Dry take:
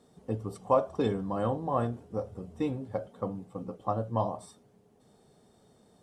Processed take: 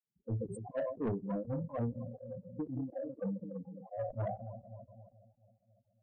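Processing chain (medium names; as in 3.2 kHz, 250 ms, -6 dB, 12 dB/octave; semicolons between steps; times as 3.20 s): rattle on loud lows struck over -47 dBFS, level -29 dBFS; bass shelf 430 Hz +10 dB; expander -42 dBFS; spectral noise reduction 22 dB; filtered feedback delay 138 ms, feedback 73%, low-pass 2.6 kHz, level -16.5 dB; granulator 221 ms, grains 4.1 per s, spray 14 ms, pitch spread up and down by 0 st; in parallel at -3 dB: compression, threshold -38 dBFS, peak gain reduction 18.5 dB; on the sum: loudest bins only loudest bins 8; saturation -25 dBFS, distortion -10 dB; decay stretcher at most 47 dB/s; trim -4.5 dB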